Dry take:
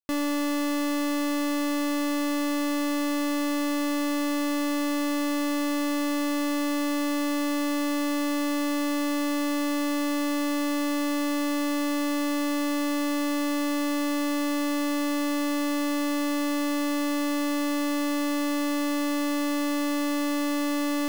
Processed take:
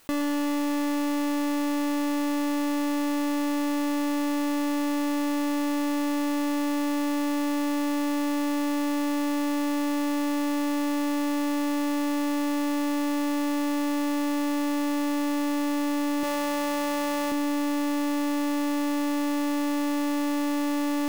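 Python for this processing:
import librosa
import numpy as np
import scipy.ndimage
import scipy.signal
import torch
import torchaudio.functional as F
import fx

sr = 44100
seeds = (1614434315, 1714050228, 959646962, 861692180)

p1 = fx.low_shelf_res(x, sr, hz=320.0, db=-8.5, q=1.5, at=(16.23, 17.32))
p2 = fx.sample_hold(p1, sr, seeds[0], rate_hz=6800.0, jitter_pct=0)
p3 = p1 + (p2 * librosa.db_to_amplitude(-7.5))
p4 = fx.echo_banded(p3, sr, ms=122, feedback_pct=83, hz=2200.0, wet_db=-4)
p5 = fx.env_flatten(p4, sr, amount_pct=70)
y = p5 * librosa.db_to_amplitude(-3.0)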